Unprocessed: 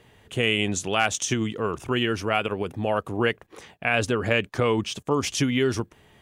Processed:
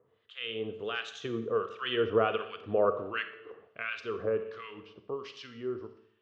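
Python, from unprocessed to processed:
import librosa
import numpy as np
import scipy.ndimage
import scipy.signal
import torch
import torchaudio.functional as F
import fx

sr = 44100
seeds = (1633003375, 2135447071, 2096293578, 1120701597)

p1 = fx.doppler_pass(x, sr, speed_mps=20, closest_m=14.0, pass_at_s=2.37)
p2 = p1 + fx.echo_feedback(p1, sr, ms=61, feedback_pct=53, wet_db=-16, dry=0)
p3 = fx.harmonic_tremolo(p2, sr, hz=1.4, depth_pct=100, crossover_hz=1300.0)
p4 = fx.cabinet(p3, sr, low_hz=140.0, low_slope=12, high_hz=3900.0, hz=(170.0, 260.0, 450.0, 850.0, 1200.0, 2200.0), db=(-9, -6, 8, -9, 7, -6))
y = fx.rev_schroeder(p4, sr, rt60_s=0.71, comb_ms=28, drr_db=9.5)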